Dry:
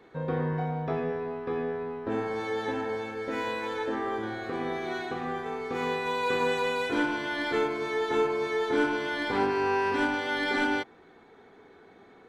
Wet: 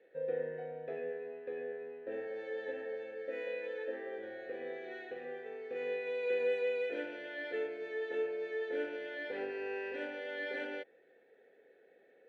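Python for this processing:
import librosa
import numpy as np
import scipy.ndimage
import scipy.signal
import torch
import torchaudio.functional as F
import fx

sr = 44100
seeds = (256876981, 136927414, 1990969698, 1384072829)

y = fx.vowel_filter(x, sr, vowel='e')
y = fx.notch(y, sr, hz=5200.0, q=20.0)
y = y * 10.0 ** (1.0 / 20.0)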